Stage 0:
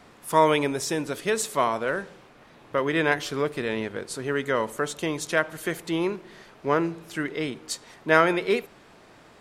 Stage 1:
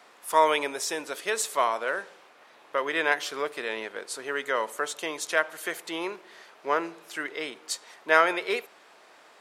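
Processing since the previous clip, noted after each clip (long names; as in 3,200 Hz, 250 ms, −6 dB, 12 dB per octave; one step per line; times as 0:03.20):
high-pass filter 550 Hz 12 dB per octave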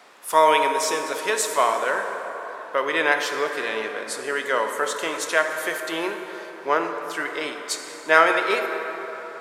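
dense smooth reverb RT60 4.3 s, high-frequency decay 0.45×, DRR 4.5 dB
level +4 dB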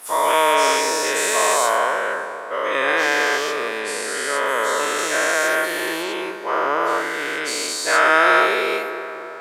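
every bin's largest magnitude spread in time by 480 ms
level −5 dB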